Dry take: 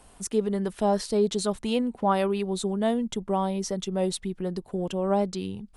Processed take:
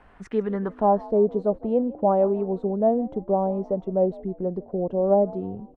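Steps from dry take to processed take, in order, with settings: low-pass sweep 1.8 kHz -> 630 Hz, 0.43–1.17 s; frequency-shifting echo 157 ms, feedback 41%, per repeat +56 Hz, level -21 dB

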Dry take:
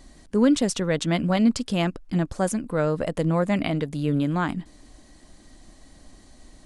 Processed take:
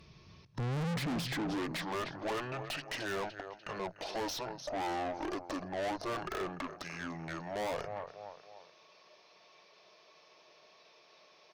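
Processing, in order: hum notches 60/120/180/240 Hz; speed mistake 78 rpm record played at 45 rpm; in parallel at -2.5 dB: peak limiter -20.5 dBFS, peak gain reduction 13 dB; on the sum: spectral noise reduction 9 dB; high-pass sweep 68 Hz -> 610 Hz, 0.29–1.80 s; feedback delay 296 ms, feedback 42%, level -19.5 dB; valve stage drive 33 dB, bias 0.35; de-esser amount 80%

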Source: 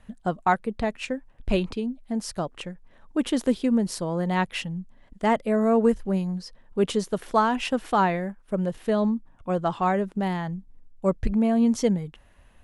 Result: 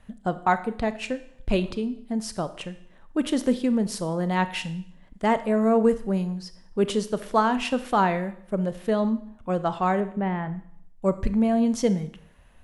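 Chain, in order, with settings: 10.00–10.55 s: low-pass 2.5 kHz 24 dB/octave; Schroeder reverb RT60 0.64 s, combs from 25 ms, DRR 12 dB

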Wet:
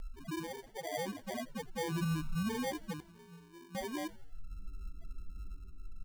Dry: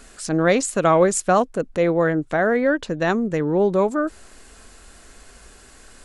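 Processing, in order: bit-reversed sample order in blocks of 64 samples; 0.46–0.94 s: amplifier tone stack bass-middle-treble 6-0-2; hum notches 50/100/150 Hz; 1.91–2.50 s: RIAA curve playback; peak limiter -14.5 dBFS, peak gain reduction 9 dB; compression 4:1, threshold -39 dBFS, peak gain reduction 17 dB; loudest bins only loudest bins 2; 3.00–3.75 s: feedback comb 170 Hz, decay 0.85 s, harmonics all, mix 100%; sample-and-hold 33×; saturation -34 dBFS, distortion -26 dB; frequency-shifting echo 85 ms, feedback 57%, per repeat -98 Hz, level -21 dB; trim +9 dB

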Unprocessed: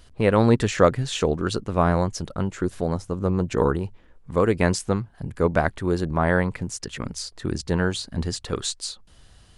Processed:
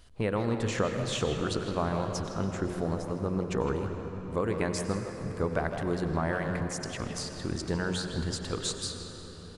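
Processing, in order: de-hum 45.23 Hz, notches 12; compression 6:1, threshold -20 dBFS, peak gain reduction 9.5 dB; speakerphone echo 160 ms, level -7 dB; on a send at -6.5 dB: reverberation RT60 5.2 s, pre-delay 84 ms; on the sum: trim -5 dB

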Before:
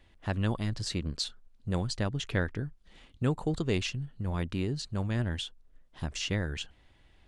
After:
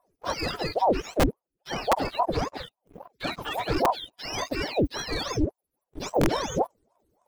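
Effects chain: spectrum inverted on a logarithmic axis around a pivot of 690 Hz; 0.67–3.27 s: treble shelf 4.6 kHz -9 dB; waveshaping leveller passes 3; bass shelf 440 Hz +10 dB; integer overflow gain 7.5 dB; ring modulator with a swept carrier 510 Hz, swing 70%, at 3.6 Hz; trim -6 dB

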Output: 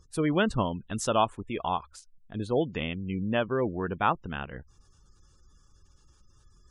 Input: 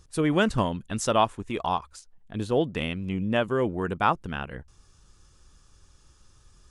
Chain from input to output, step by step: spectral gate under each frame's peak -30 dB strong; trim -2.5 dB

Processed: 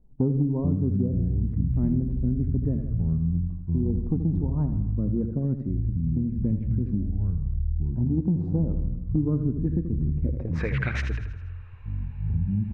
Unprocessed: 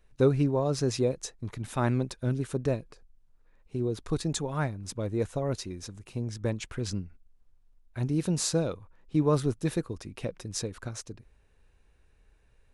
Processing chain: low-pass sweep 230 Hz -> 2.5 kHz, 10.23–10.74 s; dynamic bell 3.2 kHz, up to +5 dB, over -58 dBFS, Q 1.3; ever faster or slower copies 341 ms, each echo -7 st, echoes 3; feedback delay 80 ms, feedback 53%, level -10 dB; compression 3:1, threshold -27 dBFS, peak gain reduction 8 dB; sweeping bell 0.24 Hz 850–2200 Hz +14 dB; trim +5 dB

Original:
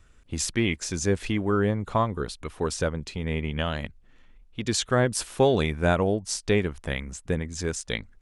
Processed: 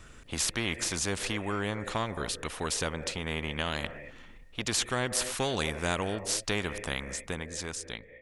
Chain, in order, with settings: fade out at the end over 1.51 s; on a send at -4 dB: cascade formant filter e + reverberation, pre-delay 3 ms; on the sum: spectrum-flattening compressor 2:1

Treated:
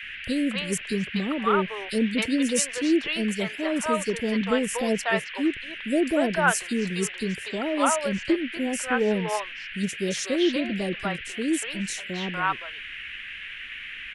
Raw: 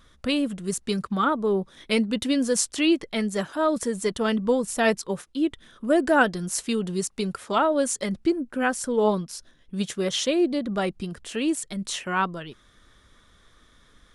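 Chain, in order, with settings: three bands offset in time highs, lows, mids 30/270 ms, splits 600/4000 Hz; band noise 1.6–3 kHz -38 dBFS

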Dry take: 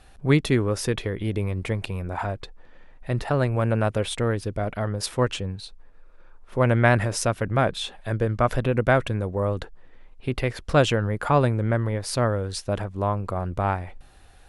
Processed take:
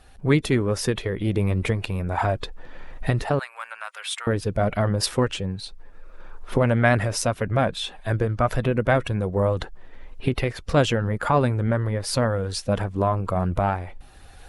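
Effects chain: coarse spectral quantiser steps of 15 dB; recorder AGC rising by 9.4 dB/s; 3.39–4.27 s: high-pass 1.1 kHz 24 dB/octave

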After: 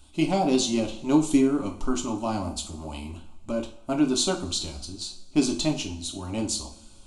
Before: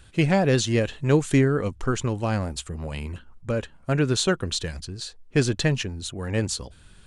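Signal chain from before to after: static phaser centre 470 Hz, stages 6; two-slope reverb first 0.38 s, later 2.2 s, from -22 dB, DRR 2 dB

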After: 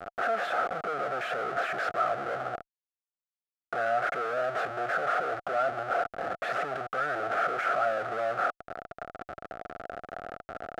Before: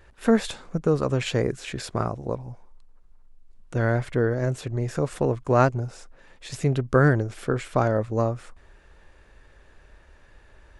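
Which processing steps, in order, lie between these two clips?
overdrive pedal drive 29 dB, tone 1 kHz, clips at -5.5 dBFS; Schmitt trigger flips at -34 dBFS; two resonant band-passes 970 Hz, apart 0.9 oct

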